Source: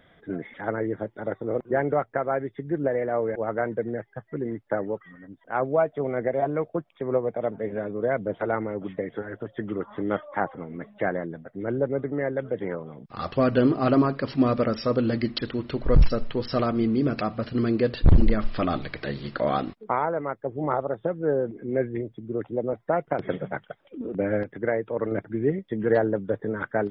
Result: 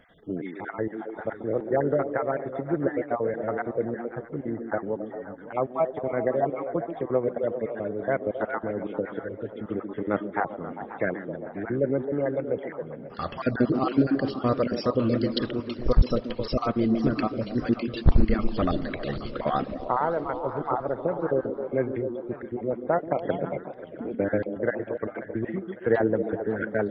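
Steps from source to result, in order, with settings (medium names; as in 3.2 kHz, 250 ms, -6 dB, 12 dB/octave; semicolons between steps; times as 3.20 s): random holes in the spectrogram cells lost 35%; repeats whose band climbs or falls 133 ms, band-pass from 270 Hz, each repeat 0.7 oct, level -4 dB; modulated delay 545 ms, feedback 53%, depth 205 cents, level -17 dB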